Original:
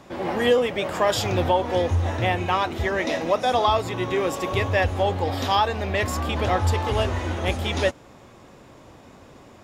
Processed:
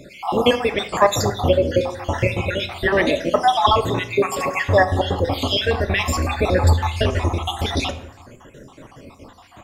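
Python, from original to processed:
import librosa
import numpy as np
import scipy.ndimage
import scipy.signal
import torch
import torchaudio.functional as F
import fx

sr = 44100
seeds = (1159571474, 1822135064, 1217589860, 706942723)

y = fx.spec_dropout(x, sr, seeds[0], share_pct=58)
y = fx.room_shoebox(y, sr, seeds[1], volume_m3=130.0, walls='mixed', distance_m=0.32)
y = F.gain(torch.from_numpy(y), 7.5).numpy()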